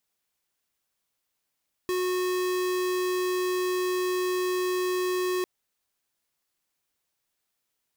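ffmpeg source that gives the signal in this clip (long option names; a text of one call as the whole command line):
ffmpeg -f lavfi -i "aevalsrc='0.0447*(2*lt(mod(365*t,1),0.5)-1)':duration=3.55:sample_rate=44100" out.wav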